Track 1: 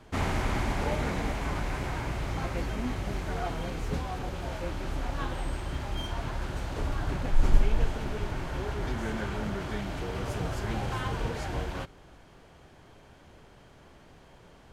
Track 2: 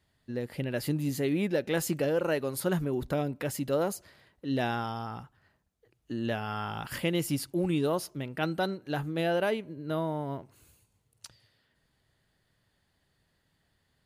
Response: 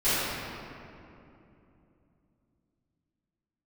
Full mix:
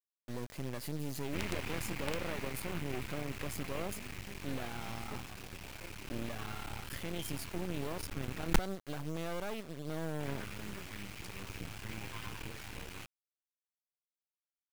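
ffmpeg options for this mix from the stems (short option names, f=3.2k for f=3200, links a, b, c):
-filter_complex "[0:a]equalizer=f=160:t=o:w=0.67:g=3,equalizer=f=630:t=o:w=0.67:g=-9,equalizer=f=2.5k:t=o:w=0.67:g=12,flanger=delay=9.1:depth=1.8:regen=24:speed=1.5:shape=triangular,adelay=1200,volume=-6dB,asplit=3[a][b][c];[a]atrim=end=8.59,asetpts=PTS-STARTPTS,afade=t=out:st=8.586:d=0.004:c=hsin[d];[b]atrim=start=8.59:end=10.2,asetpts=PTS-STARTPTS,volume=0[e];[c]atrim=start=10.2,asetpts=PTS-STARTPTS,afade=t=in:d=0.004:c=hsin[f];[d][e][f]concat=n=3:v=0:a=1[g];[1:a]alimiter=level_in=3.5dB:limit=-24dB:level=0:latency=1:release=89,volume=-3.5dB,volume=-1dB[h];[g][h]amix=inputs=2:normalize=0,acrusher=bits=5:dc=4:mix=0:aa=0.000001"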